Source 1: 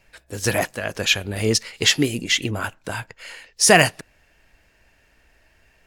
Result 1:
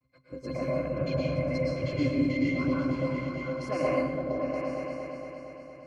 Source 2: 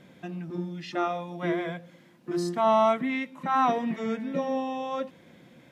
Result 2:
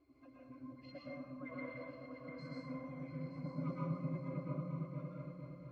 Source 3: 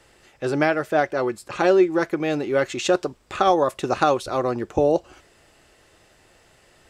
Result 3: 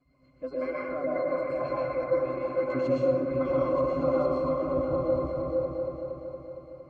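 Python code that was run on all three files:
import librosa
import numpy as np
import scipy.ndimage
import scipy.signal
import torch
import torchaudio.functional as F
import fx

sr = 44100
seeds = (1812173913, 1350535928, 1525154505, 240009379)

p1 = fx.hpss_only(x, sr, part='percussive')
p2 = fx.high_shelf(p1, sr, hz=2100.0, db=-7.0)
p3 = fx.over_compress(p2, sr, threshold_db=-27.0, ratio=-1.0)
p4 = p2 + (p3 * 10.0 ** (-3.0 / 20.0))
p5 = fx.quant_dither(p4, sr, seeds[0], bits=10, dither='none')
p6 = fx.octave_resonator(p5, sr, note='C', decay_s=0.11)
p7 = p6 + fx.echo_opening(p6, sr, ms=231, hz=200, octaves=2, feedback_pct=70, wet_db=0, dry=0)
p8 = fx.rev_plate(p7, sr, seeds[1], rt60_s=1.1, hf_ratio=0.6, predelay_ms=100, drr_db=-5.0)
y = p8 * 10.0 ** (-2.5 / 20.0)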